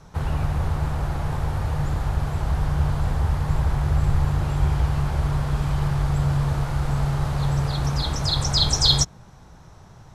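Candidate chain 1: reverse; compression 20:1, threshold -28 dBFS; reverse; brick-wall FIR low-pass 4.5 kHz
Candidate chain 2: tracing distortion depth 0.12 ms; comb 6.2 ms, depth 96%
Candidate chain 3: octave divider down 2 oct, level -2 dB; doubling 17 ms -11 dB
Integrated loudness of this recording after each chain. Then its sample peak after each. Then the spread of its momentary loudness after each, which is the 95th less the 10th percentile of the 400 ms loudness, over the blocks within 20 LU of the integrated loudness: -34.0 LUFS, -21.0 LUFS, -23.0 LUFS; -19.5 dBFS, -1.0 dBFS, -4.0 dBFS; 2 LU, 7 LU, 6 LU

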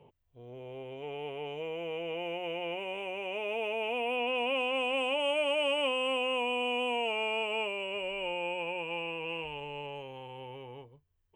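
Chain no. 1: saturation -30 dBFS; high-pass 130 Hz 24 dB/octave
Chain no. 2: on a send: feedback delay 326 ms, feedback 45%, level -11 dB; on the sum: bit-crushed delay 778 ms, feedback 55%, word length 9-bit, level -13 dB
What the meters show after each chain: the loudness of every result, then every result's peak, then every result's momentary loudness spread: -36.0 LUFS, -32.0 LUFS; -26.5 dBFS, -18.0 dBFS; 12 LU, 15 LU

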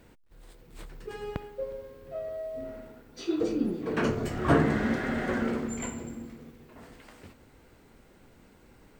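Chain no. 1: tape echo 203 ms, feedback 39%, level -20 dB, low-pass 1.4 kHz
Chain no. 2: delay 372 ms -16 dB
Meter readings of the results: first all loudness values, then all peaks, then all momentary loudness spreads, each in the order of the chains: -30.5 LUFS, -30.5 LUFS; -9.0 dBFS, -9.5 dBFS; 23 LU, 24 LU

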